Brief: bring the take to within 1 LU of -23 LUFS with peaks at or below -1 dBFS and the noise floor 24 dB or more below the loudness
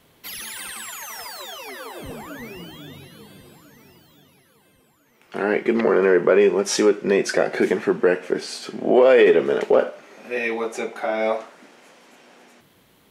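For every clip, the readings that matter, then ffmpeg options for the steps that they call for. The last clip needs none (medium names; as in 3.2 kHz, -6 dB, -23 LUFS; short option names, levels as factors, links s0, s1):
loudness -20.0 LUFS; peak level -5.0 dBFS; loudness target -23.0 LUFS
-> -af "volume=0.708"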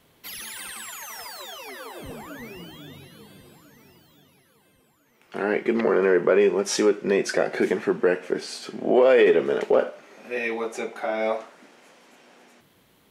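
loudness -23.0 LUFS; peak level -8.0 dBFS; noise floor -61 dBFS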